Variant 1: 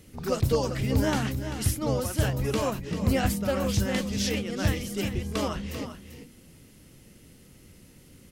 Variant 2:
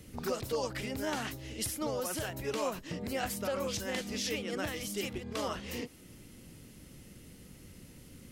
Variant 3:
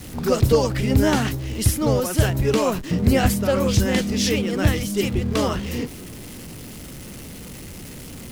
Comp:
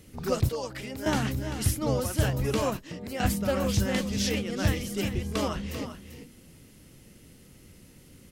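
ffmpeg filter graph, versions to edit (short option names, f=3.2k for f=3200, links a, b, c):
-filter_complex "[1:a]asplit=2[a][b];[0:a]asplit=3[c][d][e];[c]atrim=end=0.492[f];[a]atrim=start=0.488:end=1.062[g];[d]atrim=start=1.058:end=2.772[h];[b]atrim=start=2.768:end=3.202[i];[e]atrim=start=3.198[j];[f][g]acrossfade=d=0.004:c1=hsin:c2=hsin[k];[k][h]acrossfade=d=0.004:c1=hsin:c2=hsin[l];[l][i]acrossfade=d=0.004:c1=hsin:c2=hsin[m];[m][j]acrossfade=d=0.004:c1=hsin:c2=hsin"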